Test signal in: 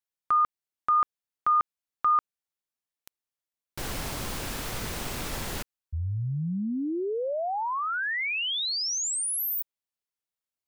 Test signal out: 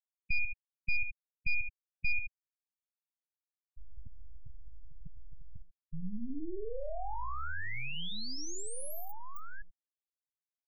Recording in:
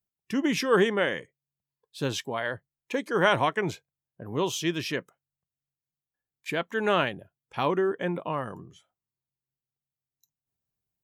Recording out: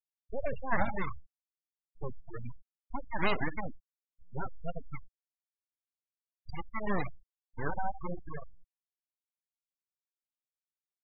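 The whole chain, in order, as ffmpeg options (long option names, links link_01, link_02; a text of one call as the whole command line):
ffmpeg -i in.wav -af "aecho=1:1:79:0.355,aeval=exprs='abs(val(0))':channel_layout=same,afftfilt=real='re*gte(hypot(re,im),0.0891)':imag='im*gte(hypot(re,im),0.0891)':win_size=1024:overlap=0.75,volume=-4dB" out.wav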